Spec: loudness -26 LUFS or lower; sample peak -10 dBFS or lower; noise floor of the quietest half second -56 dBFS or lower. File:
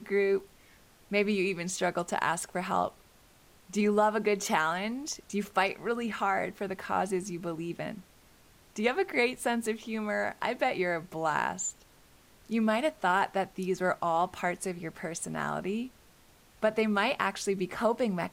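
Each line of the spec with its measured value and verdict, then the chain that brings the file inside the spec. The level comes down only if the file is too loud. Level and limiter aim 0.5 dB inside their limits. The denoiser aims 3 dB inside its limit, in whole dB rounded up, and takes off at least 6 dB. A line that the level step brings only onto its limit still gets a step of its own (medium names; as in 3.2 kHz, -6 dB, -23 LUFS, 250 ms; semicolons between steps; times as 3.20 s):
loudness -30.5 LUFS: pass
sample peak -12.5 dBFS: pass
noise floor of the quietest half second -59 dBFS: pass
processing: none needed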